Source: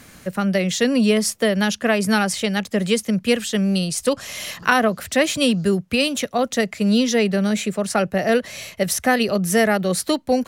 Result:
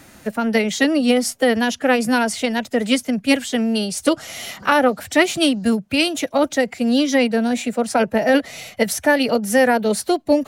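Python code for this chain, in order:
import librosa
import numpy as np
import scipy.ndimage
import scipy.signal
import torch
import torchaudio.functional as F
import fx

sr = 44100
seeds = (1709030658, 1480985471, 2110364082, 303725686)

y = fx.peak_eq(x, sr, hz=590.0, db=5.5, octaves=1.3)
y = fx.pitch_keep_formants(y, sr, semitones=2.5)
y = y * 10.0 ** (-1.0 / 20.0)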